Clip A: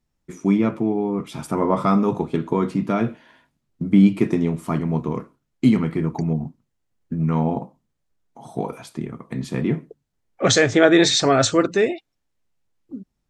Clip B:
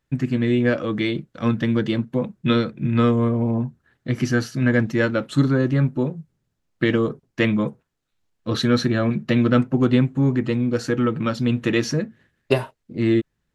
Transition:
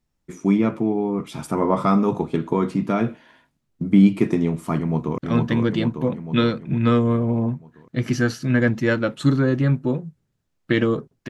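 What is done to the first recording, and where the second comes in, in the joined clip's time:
clip A
4.78–5.18 echo throw 0.45 s, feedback 60%, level -2 dB
5.18 switch to clip B from 1.3 s

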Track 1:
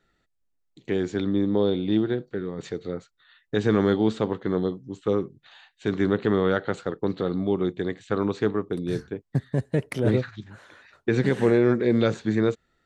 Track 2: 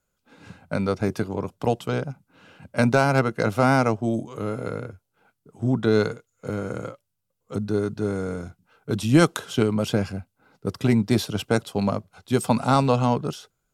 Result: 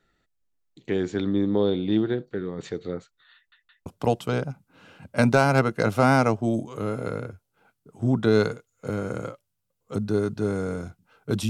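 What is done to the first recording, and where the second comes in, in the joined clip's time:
track 1
3.35 stutter in place 0.17 s, 3 plays
3.86 switch to track 2 from 1.46 s

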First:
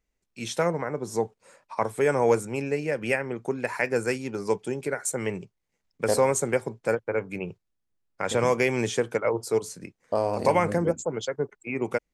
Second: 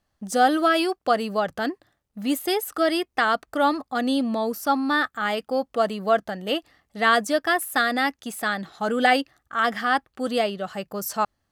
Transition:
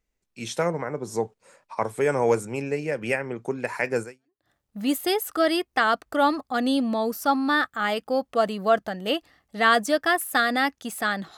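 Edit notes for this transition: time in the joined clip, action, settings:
first
4.26 switch to second from 1.67 s, crossfade 0.48 s exponential

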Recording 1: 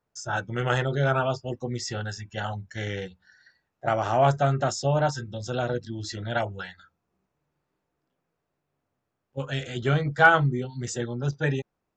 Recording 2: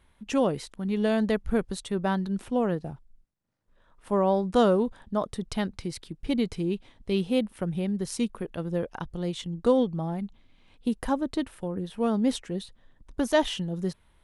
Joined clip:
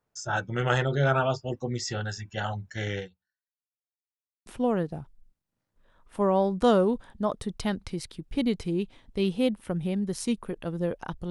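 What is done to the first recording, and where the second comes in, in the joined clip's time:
recording 1
2.99–3.96 fade out exponential
3.96–4.46 mute
4.46 switch to recording 2 from 2.38 s

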